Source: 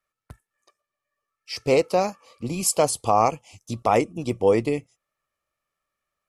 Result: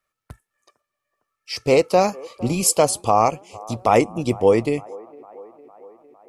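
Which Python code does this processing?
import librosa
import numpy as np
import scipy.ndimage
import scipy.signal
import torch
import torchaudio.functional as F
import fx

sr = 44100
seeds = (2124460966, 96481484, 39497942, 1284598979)

y = fx.rider(x, sr, range_db=5, speed_s=0.5)
y = fx.echo_wet_bandpass(y, sr, ms=456, feedback_pct=63, hz=670.0, wet_db=-20.5)
y = F.gain(torch.from_numpy(y), 4.5).numpy()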